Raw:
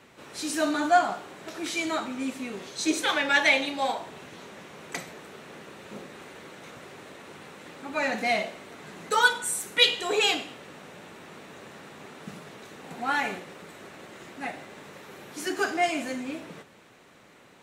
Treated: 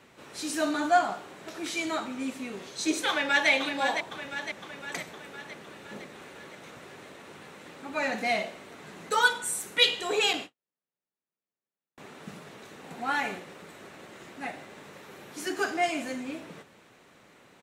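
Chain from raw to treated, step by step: 3.09–3.49 echo throw 0.51 s, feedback 60%, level -7 dB; 10.33–11.98 gate -36 dBFS, range -52 dB; gain -2 dB

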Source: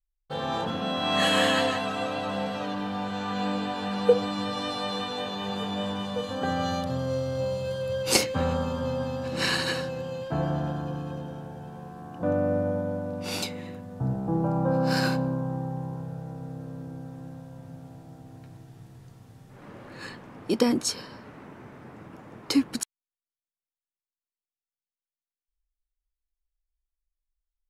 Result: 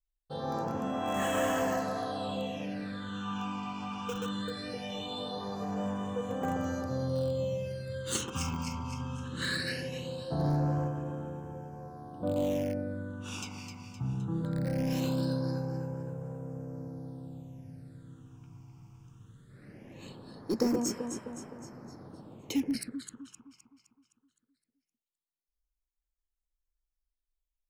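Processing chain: echo with dull and thin repeats by turns 0.129 s, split 1300 Hz, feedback 70%, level -4.5 dB; in parallel at -11 dB: wrapped overs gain 17.5 dB; 10.39–10.88 on the sum: sample leveller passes 1; phaser stages 8, 0.2 Hz, lowest notch 520–4200 Hz; gain -7.5 dB

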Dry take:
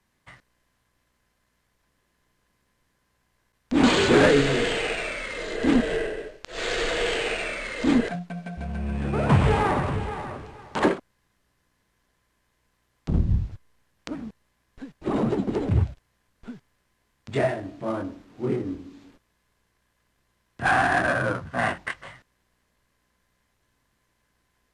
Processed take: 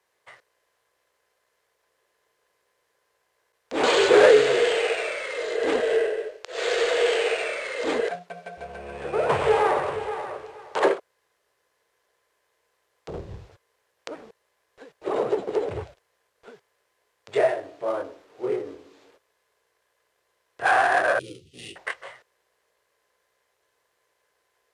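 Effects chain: HPF 150 Hz 6 dB/oct; resonant low shelf 330 Hz -10.5 dB, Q 3; 21.19–21.76 elliptic band-stop 340–2900 Hz, stop band 40 dB

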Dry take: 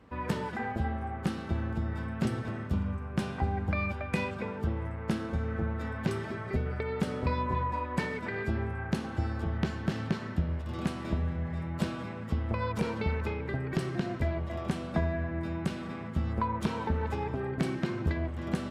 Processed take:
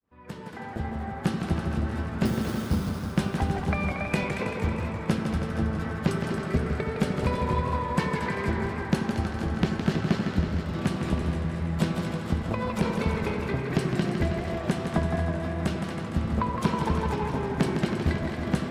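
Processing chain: opening faded in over 1.32 s; 2.25–2.89 sample-rate reducer 5000 Hz, jitter 0%; harmonic-percussive split harmonic -6 dB; on a send: split-band echo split 530 Hz, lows 85 ms, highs 0.23 s, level -8 dB; on the sum: warbling echo 0.161 s, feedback 71%, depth 134 cents, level -7 dB; gain +6.5 dB

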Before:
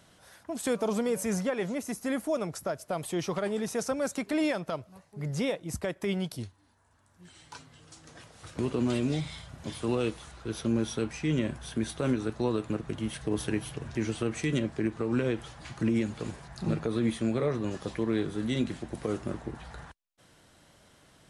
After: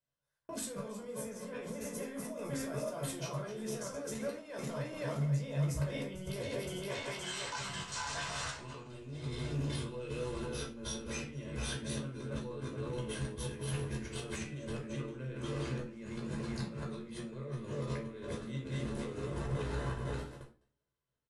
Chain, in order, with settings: regenerating reverse delay 0.259 s, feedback 64%, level -8 dB; 6.9–8.88 spectral gain 640–8800 Hz +10 dB; gate -46 dBFS, range -43 dB; 6.3–7.54 resonant low shelf 260 Hz -7 dB, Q 1.5; negative-ratio compressor -40 dBFS, ratio -1; limiter -30 dBFS, peak gain reduction 11.5 dB; 8.5–9.15 level quantiser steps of 12 dB; doubler 14 ms -5 dB; 13.97–14.41 hard clip -31 dBFS, distortion -42 dB; reverb RT60 0.35 s, pre-delay 15 ms, DRR 2.5 dB; gain -4 dB

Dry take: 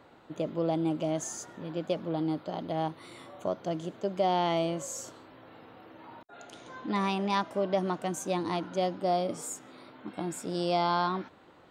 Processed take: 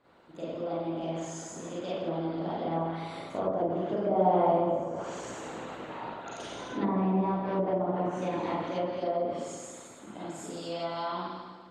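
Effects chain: Doppler pass-by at 5.35, 11 m/s, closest 13 m; Schroeder reverb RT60 1.4 s, combs from 33 ms, DRR -9.5 dB; harmonic-percussive split percussive +9 dB; treble ducked by the level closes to 760 Hz, closed at -20 dBFS; gain -3.5 dB

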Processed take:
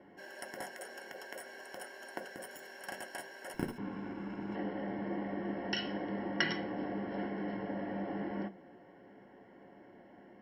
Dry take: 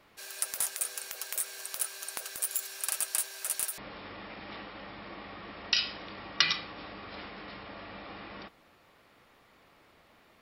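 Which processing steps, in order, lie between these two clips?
3.54–4.55 minimum comb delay 0.8 ms; running mean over 36 samples; reverb RT60 0.15 s, pre-delay 3 ms, DRR 7 dB; gain +8 dB

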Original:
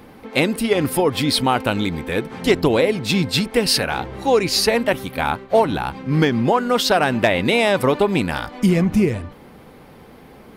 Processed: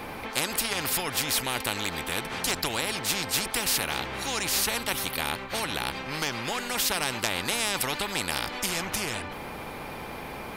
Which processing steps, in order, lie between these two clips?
small resonant body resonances 850/2400 Hz, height 13 dB; spectral compressor 4:1; gain -8.5 dB

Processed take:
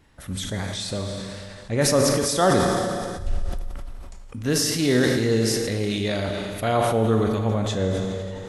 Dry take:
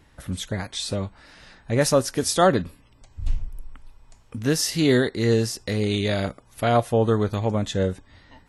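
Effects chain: Schroeder reverb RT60 2.2 s, combs from 28 ms, DRR 5 dB; sustainer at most 23 dB/s; gain -2.5 dB

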